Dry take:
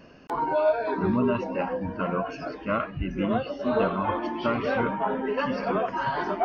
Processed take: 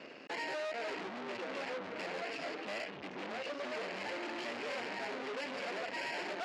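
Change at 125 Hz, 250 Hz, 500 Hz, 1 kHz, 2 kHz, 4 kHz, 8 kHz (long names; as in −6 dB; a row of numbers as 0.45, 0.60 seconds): −25.0 dB, −18.5 dB, −14.0 dB, −15.0 dB, −6.0 dB, −1.0 dB, can't be measured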